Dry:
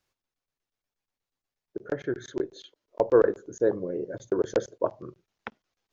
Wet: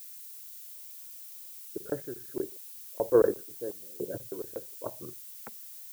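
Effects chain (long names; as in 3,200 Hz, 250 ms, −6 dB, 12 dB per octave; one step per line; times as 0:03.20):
Bessel low-pass filter 1,100 Hz
sample-and-hold tremolo, depth 95%
background noise violet −46 dBFS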